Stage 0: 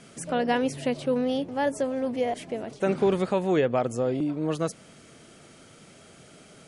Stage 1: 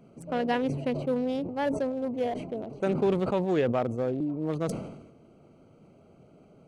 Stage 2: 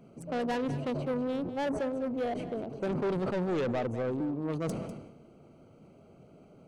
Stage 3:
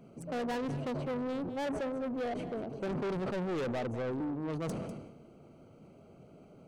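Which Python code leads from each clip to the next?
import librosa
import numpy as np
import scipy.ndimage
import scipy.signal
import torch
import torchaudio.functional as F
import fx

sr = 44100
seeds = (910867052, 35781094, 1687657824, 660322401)

y1 = fx.wiener(x, sr, points=25)
y1 = fx.sustainer(y1, sr, db_per_s=59.0)
y1 = y1 * 10.0 ** (-2.5 / 20.0)
y2 = 10.0 ** (-27.0 / 20.0) * np.tanh(y1 / 10.0 ** (-27.0 / 20.0))
y2 = y2 + 10.0 ** (-13.0 / 20.0) * np.pad(y2, (int(198 * sr / 1000.0), 0))[:len(y2)]
y3 = 10.0 ** (-31.0 / 20.0) * np.tanh(y2 / 10.0 ** (-31.0 / 20.0))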